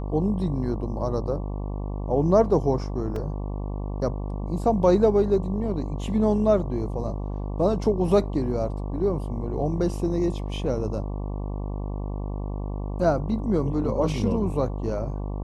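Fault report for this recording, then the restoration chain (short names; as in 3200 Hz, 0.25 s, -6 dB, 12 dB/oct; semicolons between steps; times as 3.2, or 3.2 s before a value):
buzz 50 Hz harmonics 23 -30 dBFS
3.16 gap 2.9 ms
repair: de-hum 50 Hz, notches 23; interpolate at 3.16, 2.9 ms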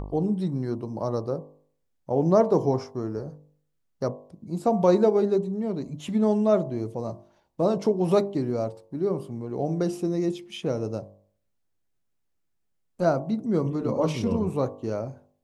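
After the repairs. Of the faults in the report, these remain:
none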